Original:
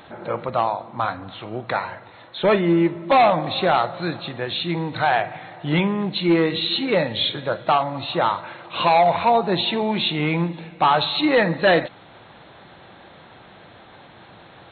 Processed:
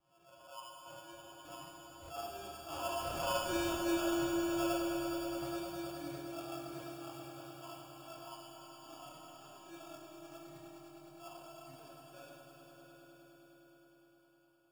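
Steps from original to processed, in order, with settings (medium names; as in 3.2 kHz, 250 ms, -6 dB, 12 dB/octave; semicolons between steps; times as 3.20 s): Doppler pass-by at 3.55 s, 50 m/s, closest 13 m; high-pass 95 Hz 24 dB/octave; treble shelf 3.7 kHz +10.5 dB; in parallel at +0.5 dB: compression, threshold -42 dBFS, peak gain reduction 22 dB; on the sum: inharmonic resonator 340 Hz, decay 0.63 s, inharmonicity 0.008; chorus voices 6, 0.73 Hz, delay 27 ms, depth 3.4 ms; sample-and-hold 22×; saturation -37 dBFS, distortion -20 dB; on a send: echo with a slow build-up 103 ms, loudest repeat 5, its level -12 dB; on the sum: Schroeder reverb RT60 3.5 s, combs from 30 ms, DRR 3 dB; attacks held to a fixed rise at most 100 dB/s; trim +8.5 dB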